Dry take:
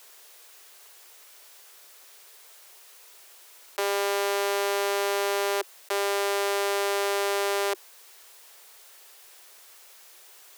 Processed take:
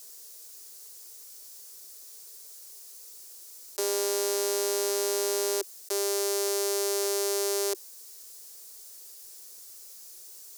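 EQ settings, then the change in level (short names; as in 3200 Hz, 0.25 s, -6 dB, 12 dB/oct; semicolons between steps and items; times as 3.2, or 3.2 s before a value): tone controls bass +2 dB, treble +14 dB; band shelf 1500 Hz -10.5 dB 2.8 oct; high shelf 4500 Hz -9.5 dB; 0.0 dB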